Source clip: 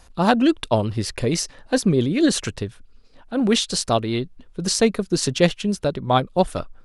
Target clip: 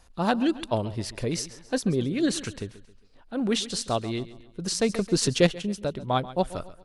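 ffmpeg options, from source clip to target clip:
-filter_complex "[0:a]aecho=1:1:135|270|405|540:0.15|0.0628|0.0264|0.0111,asettb=1/sr,asplit=3[a][b][c];[a]atrim=end=4.894[d];[b]atrim=start=4.89:end=5.47,asetpts=PTS-STARTPTS,afade=t=in:d=0.004:c=qsin,afade=t=out:st=0.576:d=0.004:c=qsin,acontrast=30[e];[c]atrim=start=5.466[f];[d][e]acrossfade=d=0.004:c1=hsin:c2=qsin[g];[g][f]acrossfade=d=0.004:c1=qsin:c2=hsin,volume=-7dB"

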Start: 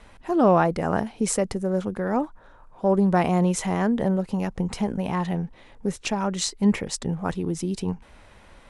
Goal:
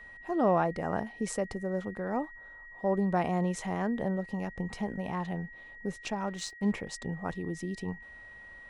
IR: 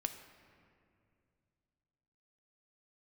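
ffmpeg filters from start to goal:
-filter_complex "[0:a]equalizer=f=720:w=1.5:g=2.5,asplit=3[a][b][c];[a]afade=t=out:st=6.26:d=0.02[d];[b]aeval=exprs='sgn(val(0))*max(abs(val(0))-0.00708,0)':c=same,afade=t=in:st=6.26:d=0.02,afade=t=out:st=6.71:d=0.02[e];[c]afade=t=in:st=6.71:d=0.02[f];[d][e][f]amix=inputs=3:normalize=0,highshelf=f=8.7k:g=-8.5,aeval=exprs='val(0)+0.0126*sin(2*PI*1900*n/s)':c=same,volume=-9dB"

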